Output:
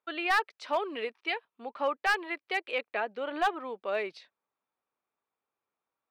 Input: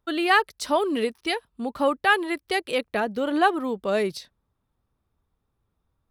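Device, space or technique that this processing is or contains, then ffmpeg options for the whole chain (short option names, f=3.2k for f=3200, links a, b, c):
megaphone: -af "highpass=520,lowpass=2.9k,equalizer=f=2.4k:t=o:w=0.4:g=6,asoftclip=type=hard:threshold=-15dB,volume=-5dB"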